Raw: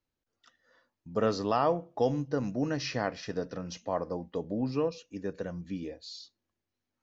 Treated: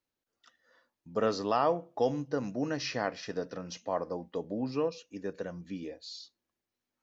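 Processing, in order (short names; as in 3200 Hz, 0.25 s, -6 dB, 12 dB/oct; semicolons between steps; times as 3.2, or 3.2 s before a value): low shelf 130 Hz -11.5 dB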